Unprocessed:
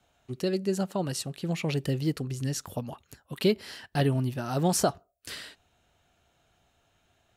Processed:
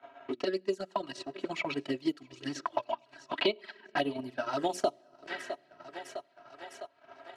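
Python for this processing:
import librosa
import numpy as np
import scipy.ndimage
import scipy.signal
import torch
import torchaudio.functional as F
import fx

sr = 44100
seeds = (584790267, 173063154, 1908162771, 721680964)

y = fx.high_shelf(x, sr, hz=3000.0, db=-8.0)
y = fx.env_lowpass(y, sr, base_hz=1800.0, full_db=-22.0)
y = scipy.signal.sosfilt(scipy.signal.butter(2, 100.0, 'highpass', fs=sr, output='sos'), y)
y = fx.hum_notches(y, sr, base_hz=60, count=10)
y = fx.env_flanger(y, sr, rest_ms=7.5, full_db=-23.0)
y = fx.weighting(y, sr, curve='A')
y = fx.spec_box(y, sr, start_s=2.61, length_s=1.1, low_hz=590.0, high_hz=5100.0, gain_db=8)
y = y + 0.7 * np.pad(y, (int(3.1 * sr / 1000.0), 0))[:len(y)]
y = fx.echo_thinned(y, sr, ms=657, feedback_pct=46, hz=350.0, wet_db=-18.5)
y = fx.room_shoebox(y, sr, seeds[0], volume_m3=3500.0, walls='mixed', distance_m=0.31)
y = fx.transient(y, sr, attack_db=5, sustain_db=-11)
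y = fx.band_squash(y, sr, depth_pct=70)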